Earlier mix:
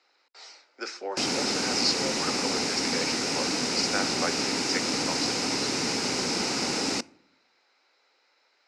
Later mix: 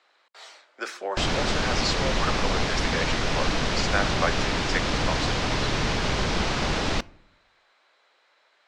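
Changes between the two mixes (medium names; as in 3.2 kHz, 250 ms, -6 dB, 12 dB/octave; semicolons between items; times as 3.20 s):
background: add low-pass 5.6 kHz 24 dB/octave; master: remove cabinet simulation 260–7200 Hz, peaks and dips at 260 Hz +6 dB, 630 Hz -8 dB, 1.1 kHz -8 dB, 1.7 kHz -7 dB, 3.3 kHz -10 dB, 5.1 kHz +8 dB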